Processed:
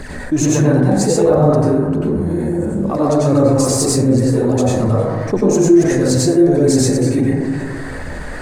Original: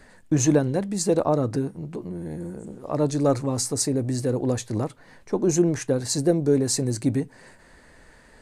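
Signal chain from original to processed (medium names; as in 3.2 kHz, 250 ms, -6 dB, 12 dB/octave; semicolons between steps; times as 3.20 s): phaser 1.5 Hz, delay 3.4 ms, feedback 58%; plate-style reverb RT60 1.2 s, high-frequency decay 0.25×, pre-delay 80 ms, DRR -7.5 dB; level flattener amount 50%; trim -6.5 dB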